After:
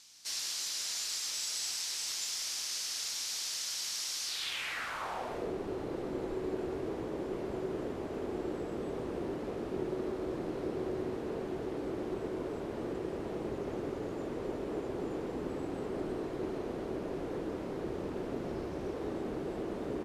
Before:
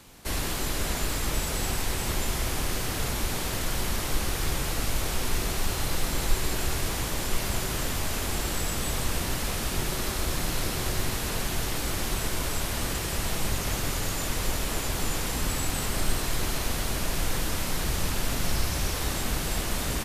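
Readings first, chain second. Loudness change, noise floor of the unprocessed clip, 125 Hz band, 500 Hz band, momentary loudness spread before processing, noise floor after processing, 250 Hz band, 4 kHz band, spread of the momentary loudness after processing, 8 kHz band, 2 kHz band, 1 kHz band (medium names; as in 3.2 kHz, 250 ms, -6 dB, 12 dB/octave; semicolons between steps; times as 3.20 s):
-7.5 dB, -31 dBFS, -14.5 dB, 0.0 dB, 1 LU, -40 dBFS, -2.5 dB, -6.5 dB, 5 LU, -8.5 dB, -12.0 dB, -9.5 dB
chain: hum 60 Hz, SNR 20 dB; band-pass sweep 5.4 kHz -> 380 Hz, 4.24–5.54 s; trim +4 dB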